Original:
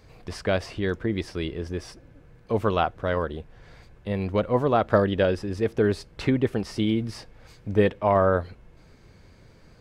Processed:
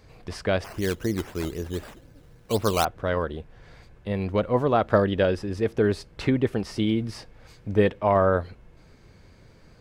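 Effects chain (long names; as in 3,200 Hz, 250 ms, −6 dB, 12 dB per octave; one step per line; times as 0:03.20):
0:00.64–0:02.85: sample-and-hold swept by an LFO 10×, swing 60% 3.9 Hz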